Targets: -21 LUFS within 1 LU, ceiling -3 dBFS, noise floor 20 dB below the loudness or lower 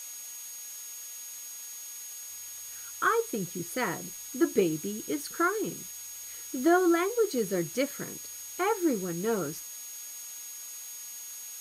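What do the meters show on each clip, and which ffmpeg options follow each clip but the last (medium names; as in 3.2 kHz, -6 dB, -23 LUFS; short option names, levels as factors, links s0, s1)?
steady tone 6.6 kHz; tone level -42 dBFS; noise floor -43 dBFS; noise floor target -52 dBFS; loudness -31.5 LUFS; peak level -12.0 dBFS; loudness target -21.0 LUFS
-> -af "bandreject=f=6600:w=30"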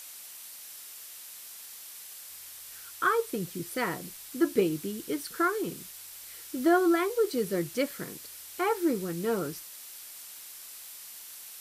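steady tone not found; noise floor -46 dBFS; noise floor target -50 dBFS
-> -af "afftdn=nr=6:nf=-46"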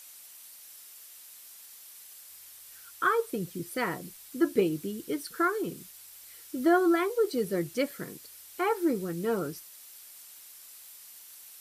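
noise floor -50 dBFS; loudness -29.5 LUFS; peak level -12.5 dBFS; loudness target -21.0 LUFS
-> -af "volume=2.66"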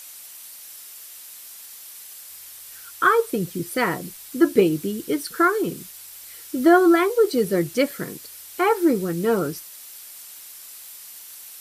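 loudness -21.0 LUFS; peak level -4.0 dBFS; noise floor -42 dBFS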